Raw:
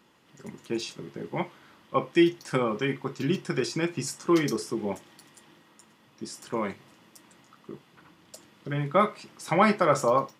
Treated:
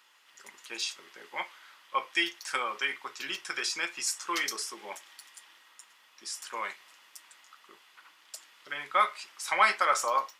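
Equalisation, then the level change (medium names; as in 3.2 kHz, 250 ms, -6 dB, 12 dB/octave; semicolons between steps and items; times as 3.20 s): high-pass 1.3 kHz 12 dB/octave; +4.0 dB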